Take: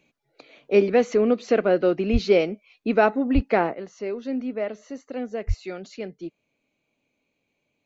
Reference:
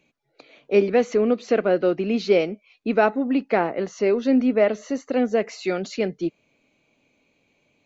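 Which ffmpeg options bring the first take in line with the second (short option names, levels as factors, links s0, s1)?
-filter_complex "[0:a]asplit=3[s0][s1][s2];[s0]afade=t=out:st=2.12:d=0.02[s3];[s1]highpass=f=140:w=0.5412,highpass=f=140:w=1.3066,afade=t=in:st=2.12:d=0.02,afade=t=out:st=2.24:d=0.02[s4];[s2]afade=t=in:st=2.24:d=0.02[s5];[s3][s4][s5]amix=inputs=3:normalize=0,asplit=3[s6][s7][s8];[s6]afade=t=out:st=3.34:d=0.02[s9];[s7]highpass=f=140:w=0.5412,highpass=f=140:w=1.3066,afade=t=in:st=3.34:d=0.02,afade=t=out:st=3.46:d=0.02[s10];[s8]afade=t=in:st=3.46:d=0.02[s11];[s9][s10][s11]amix=inputs=3:normalize=0,asplit=3[s12][s13][s14];[s12]afade=t=out:st=5.47:d=0.02[s15];[s13]highpass=f=140:w=0.5412,highpass=f=140:w=1.3066,afade=t=in:st=5.47:d=0.02,afade=t=out:st=5.59:d=0.02[s16];[s14]afade=t=in:st=5.59:d=0.02[s17];[s15][s16][s17]amix=inputs=3:normalize=0,asetnsamples=n=441:p=0,asendcmd='3.74 volume volume 9.5dB',volume=1"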